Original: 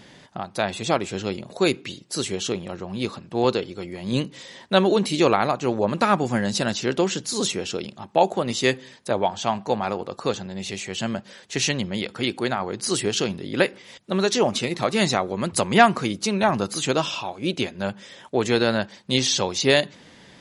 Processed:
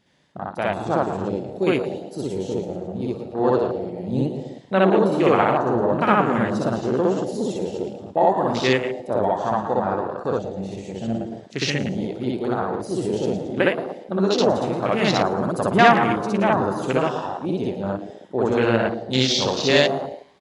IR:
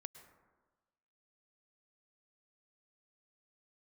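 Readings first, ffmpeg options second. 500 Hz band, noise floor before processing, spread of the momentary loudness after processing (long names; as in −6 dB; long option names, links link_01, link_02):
+3.0 dB, −49 dBFS, 11 LU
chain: -filter_complex "[0:a]asplit=6[link_01][link_02][link_03][link_04][link_05][link_06];[link_02]adelay=112,afreqshift=110,volume=-10dB[link_07];[link_03]adelay=224,afreqshift=220,volume=-16.6dB[link_08];[link_04]adelay=336,afreqshift=330,volume=-23.1dB[link_09];[link_05]adelay=448,afreqshift=440,volume=-29.7dB[link_10];[link_06]adelay=560,afreqshift=550,volume=-36.2dB[link_11];[link_01][link_07][link_08][link_09][link_10][link_11]amix=inputs=6:normalize=0,asplit=2[link_12][link_13];[1:a]atrim=start_sample=2205,adelay=62[link_14];[link_13][link_14]afir=irnorm=-1:irlink=0,volume=7.5dB[link_15];[link_12][link_15]amix=inputs=2:normalize=0,afwtdn=0.0708,volume=-2dB"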